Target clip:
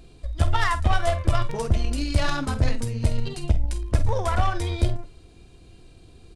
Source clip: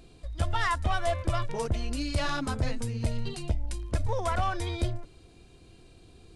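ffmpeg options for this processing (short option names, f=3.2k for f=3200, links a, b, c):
-filter_complex "[0:a]lowshelf=f=100:g=5.5,aeval=exprs='0.237*(cos(1*acos(clip(val(0)/0.237,-1,1)))-cos(1*PI/2))+0.015*(cos(3*acos(clip(val(0)/0.237,-1,1)))-cos(3*PI/2))+0.00841*(cos(6*acos(clip(val(0)/0.237,-1,1)))-cos(6*PI/2))+0.00376*(cos(7*acos(clip(val(0)/0.237,-1,1)))-cos(7*PI/2))+0.0106*(cos(8*acos(clip(val(0)/0.237,-1,1)))-cos(8*PI/2))':c=same,asplit=2[a][b];[b]adelay=49,volume=-12dB[c];[a][c]amix=inputs=2:normalize=0,volume=5dB"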